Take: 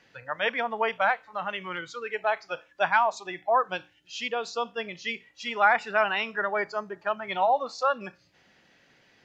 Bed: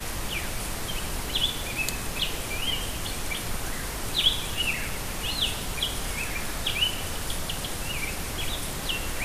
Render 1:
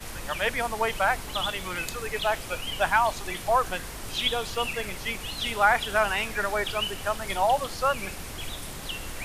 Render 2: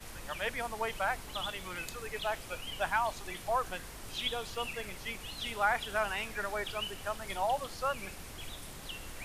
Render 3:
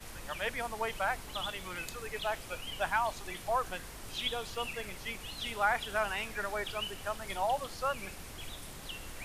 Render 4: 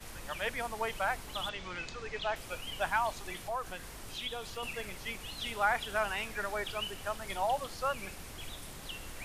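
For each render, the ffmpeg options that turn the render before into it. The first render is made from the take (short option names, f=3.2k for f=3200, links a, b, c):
-filter_complex "[1:a]volume=-5.5dB[a];[0:a][a]amix=inputs=2:normalize=0"
-af "volume=-8.5dB"
-af anull
-filter_complex "[0:a]asettb=1/sr,asplit=3[a][b][c];[a]atrim=end=1.494[d];[b]atrim=start=1.49:end=2.36,asetpts=PTS-STARTPTS,afade=t=in:d=0.004:c=qsin,afade=t=out:st=0.866:d=0.004:c=qsin,lowpass=f=6.3k:w=0.5412,lowpass=f=6.3k:w=1.3066[e];[c]atrim=start=2.356[f];[d][e]acrossfade=d=0.004:c1=hsin:c2=qsin[g];[g][f]acrossfade=d=0.004:c1=qsin:c2=hsin,asettb=1/sr,asplit=3[h][i][j];[h]atrim=end=3.434[k];[i]atrim=start=3.43:end=4.63,asetpts=PTS-STARTPTS,afade=t=in:d=0.004:c=qsin,afade=t=out:st=1.196:d=0.004:c=qsin,acompressor=threshold=-41dB:ratio=1.5:attack=3.2:release=140:knee=1:detection=peak[l];[j]atrim=start=4.626[m];[k][l]acrossfade=d=0.004:c1=hsin:c2=qsin[n];[n][m]acrossfade=d=0.004:c1=qsin:c2=hsin"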